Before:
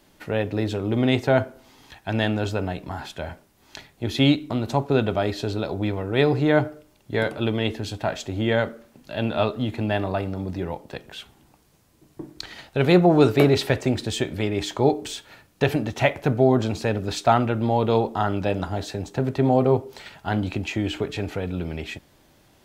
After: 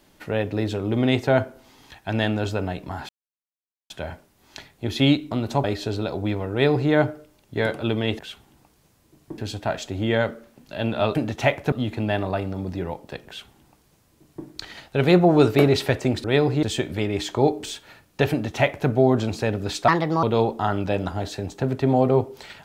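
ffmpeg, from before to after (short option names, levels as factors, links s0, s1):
-filter_complex "[0:a]asplit=11[s0][s1][s2][s3][s4][s5][s6][s7][s8][s9][s10];[s0]atrim=end=3.09,asetpts=PTS-STARTPTS,afade=t=out:st=3.086:d=0.004:c=hsin,apad=pad_dur=0.81[s11];[s1]atrim=start=3.09:end=4.832,asetpts=PTS-STARTPTS,afade=t=in:d=0.004:c=hsin[s12];[s2]atrim=start=5.208:end=7.762[s13];[s3]atrim=start=11.078:end=12.272[s14];[s4]atrim=start=7.758:end=9.532[s15];[s5]atrim=start=15.728:end=16.302[s16];[s6]atrim=start=9.528:end=14.052[s17];[s7]atrim=start=6.088:end=6.482[s18];[s8]atrim=start=14.048:end=17.304[s19];[s9]atrim=start=17.3:end=17.79,asetpts=PTS-STARTPTS,asetrate=61740,aresample=44100,atrim=end_sample=15435,asetpts=PTS-STARTPTS[s20];[s10]atrim=start=17.786[s21];[s11][s12]concat=n=2:v=0:a=1[s22];[s22][s13]acrossfade=d=0.004:c1=hsin:c2=hsin[s23];[s23][s14]acrossfade=d=0.004:c1=hsin:c2=hsin[s24];[s24][s15]acrossfade=d=0.004:c1=hsin:c2=hsin[s25];[s25][s16]acrossfade=d=0.004:c1=hsin:c2=hsin[s26];[s26][s17]acrossfade=d=0.004:c1=hsin:c2=hsin[s27];[s27][s18]acrossfade=d=0.004:c1=hsin:c2=hsin[s28];[s28][s19]acrossfade=d=0.004:c1=hsin:c2=hsin[s29];[s29][s20]acrossfade=d=0.004:c1=hsin:c2=hsin[s30];[s30][s21]acrossfade=d=0.004:c1=hsin:c2=hsin"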